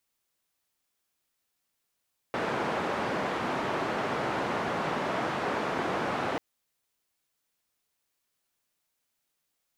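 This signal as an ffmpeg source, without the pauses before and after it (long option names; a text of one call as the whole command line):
ffmpeg -f lavfi -i "anoisesrc=color=white:duration=4.04:sample_rate=44100:seed=1,highpass=frequency=150,lowpass=frequency=1100,volume=-12.5dB" out.wav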